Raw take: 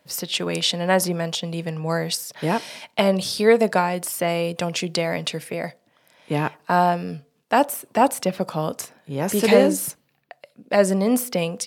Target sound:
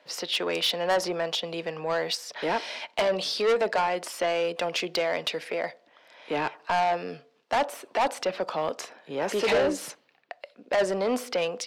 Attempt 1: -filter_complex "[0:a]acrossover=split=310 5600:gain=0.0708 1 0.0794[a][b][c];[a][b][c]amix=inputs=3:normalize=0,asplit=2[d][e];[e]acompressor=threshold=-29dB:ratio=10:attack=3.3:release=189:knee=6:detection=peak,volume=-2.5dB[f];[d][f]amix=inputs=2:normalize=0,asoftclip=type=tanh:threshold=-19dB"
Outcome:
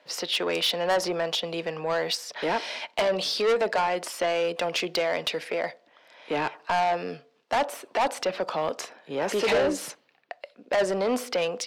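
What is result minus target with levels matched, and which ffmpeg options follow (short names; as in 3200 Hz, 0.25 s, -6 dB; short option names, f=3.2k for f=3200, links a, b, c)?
compressor: peak gain reduction -9.5 dB
-filter_complex "[0:a]acrossover=split=310 5600:gain=0.0708 1 0.0794[a][b][c];[a][b][c]amix=inputs=3:normalize=0,asplit=2[d][e];[e]acompressor=threshold=-39.5dB:ratio=10:attack=3.3:release=189:knee=6:detection=peak,volume=-2.5dB[f];[d][f]amix=inputs=2:normalize=0,asoftclip=type=tanh:threshold=-19dB"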